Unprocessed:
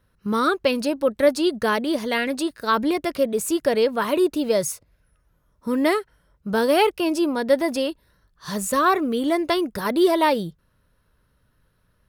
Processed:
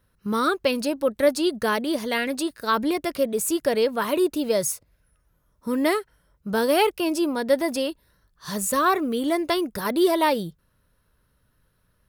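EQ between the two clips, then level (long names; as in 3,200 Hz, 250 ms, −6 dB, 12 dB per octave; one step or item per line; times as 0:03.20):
high-shelf EQ 7,500 Hz +6.5 dB
−2.0 dB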